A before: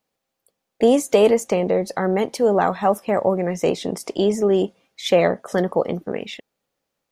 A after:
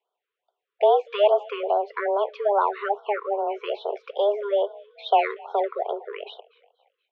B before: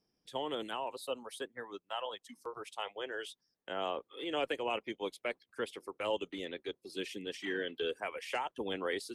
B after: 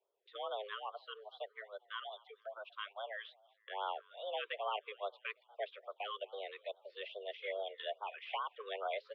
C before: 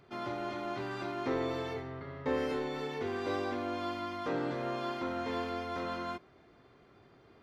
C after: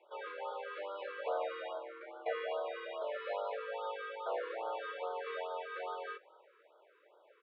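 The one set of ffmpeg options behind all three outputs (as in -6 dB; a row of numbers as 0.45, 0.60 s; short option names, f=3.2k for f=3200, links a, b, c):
-filter_complex "[0:a]asplit=4[a][b][c][d];[b]adelay=238,afreqshift=37,volume=-23.5dB[e];[c]adelay=476,afreqshift=74,volume=-30.6dB[f];[d]adelay=714,afreqshift=111,volume=-37.8dB[g];[a][e][f][g]amix=inputs=4:normalize=0,highpass=f=190:t=q:w=0.5412,highpass=f=190:t=q:w=1.307,lowpass=f=3.2k:t=q:w=0.5176,lowpass=f=3.2k:t=q:w=0.7071,lowpass=f=3.2k:t=q:w=1.932,afreqshift=200,afftfilt=real='re*(1-between(b*sr/1024,690*pow(2200/690,0.5+0.5*sin(2*PI*2.4*pts/sr))/1.41,690*pow(2200/690,0.5+0.5*sin(2*PI*2.4*pts/sr))*1.41))':imag='im*(1-between(b*sr/1024,690*pow(2200/690,0.5+0.5*sin(2*PI*2.4*pts/sr))/1.41,690*pow(2200/690,0.5+0.5*sin(2*PI*2.4*pts/sr))*1.41))':win_size=1024:overlap=0.75,volume=-2.5dB"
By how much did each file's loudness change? 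-4.0, -4.5, -4.5 LU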